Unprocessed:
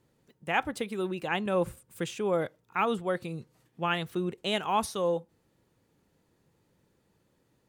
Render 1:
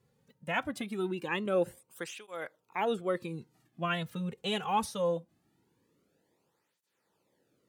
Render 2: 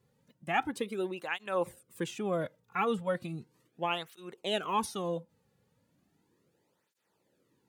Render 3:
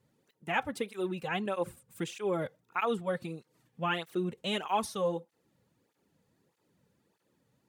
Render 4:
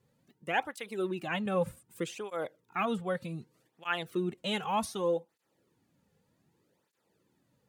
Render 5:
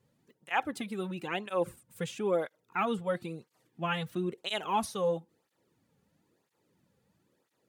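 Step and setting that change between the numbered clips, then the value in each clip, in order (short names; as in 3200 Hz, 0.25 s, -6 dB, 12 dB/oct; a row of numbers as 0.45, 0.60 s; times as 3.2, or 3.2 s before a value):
tape flanging out of phase, nulls at: 0.22, 0.36, 1.6, 0.65, 1 Hz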